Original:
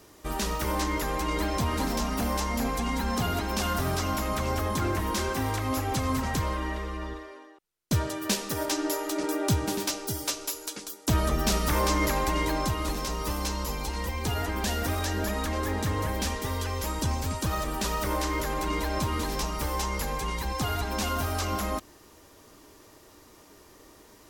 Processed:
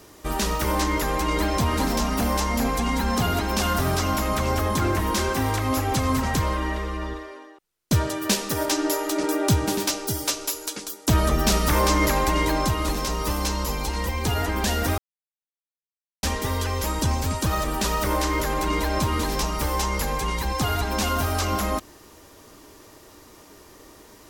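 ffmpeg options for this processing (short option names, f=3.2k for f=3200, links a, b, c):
-filter_complex "[0:a]asplit=3[a][b][c];[a]atrim=end=14.98,asetpts=PTS-STARTPTS,afade=t=out:st=14.976:d=0.004:c=hsin[d];[b]atrim=start=14.98:end=16.23,asetpts=PTS-STARTPTS,volume=0[e];[c]atrim=start=16.23,asetpts=PTS-STARTPTS,afade=t=in:d=0.004:c=hsin[f];[d][e][f]concat=n=3:v=0:a=1,acontrast=27"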